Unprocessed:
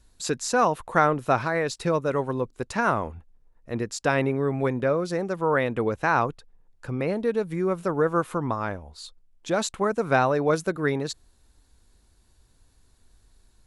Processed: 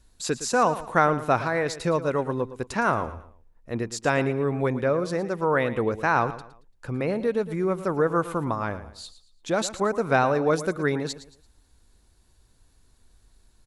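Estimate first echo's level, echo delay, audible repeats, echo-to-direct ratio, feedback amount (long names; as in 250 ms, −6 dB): −14.0 dB, 113 ms, 3, −13.5 dB, 33%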